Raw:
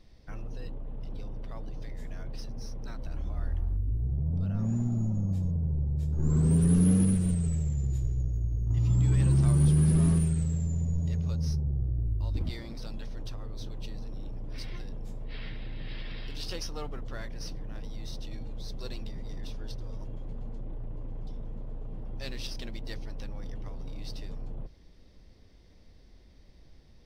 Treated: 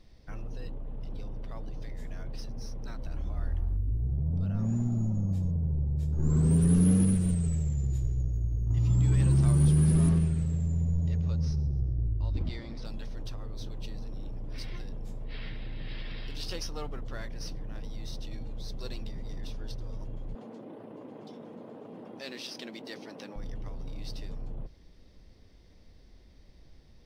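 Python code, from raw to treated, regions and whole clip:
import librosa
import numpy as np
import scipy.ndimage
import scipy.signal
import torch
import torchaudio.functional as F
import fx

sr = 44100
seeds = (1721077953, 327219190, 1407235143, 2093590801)

y = fx.chain(x, sr, fx.air_absorb(metres=79.0),
    fx.echo_feedback(ms=133, feedback_pct=42, wet_db=-17), at=(10.09, 12.85))
y = fx.chain(y, sr, fx.highpass(hz=220.0, slope=24),
    fx.high_shelf(hz=5700.0, db=-4.5),
    fx.env_flatten(amount_pct=50), at=(20.35, 23.36))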